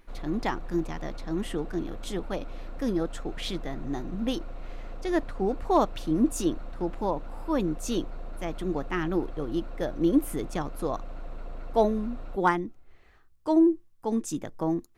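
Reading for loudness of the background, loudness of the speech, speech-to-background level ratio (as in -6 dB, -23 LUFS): -44.0 LUFS, -29.5 LUFS, 14.5 dB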